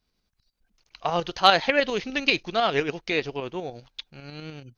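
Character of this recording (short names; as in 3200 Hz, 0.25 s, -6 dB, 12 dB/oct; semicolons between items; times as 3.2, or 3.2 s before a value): tremolo saw up 10 Hz, depth 50%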